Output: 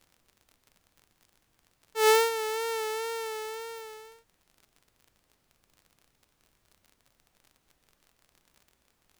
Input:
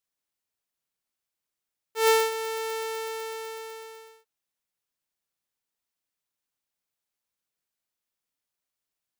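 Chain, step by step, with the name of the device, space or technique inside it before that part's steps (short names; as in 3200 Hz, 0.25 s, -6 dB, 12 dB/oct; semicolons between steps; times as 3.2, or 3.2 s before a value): vinyl LP (wow and flutter; crackle 48/s -44 dBFS; pink noise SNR 37 dB)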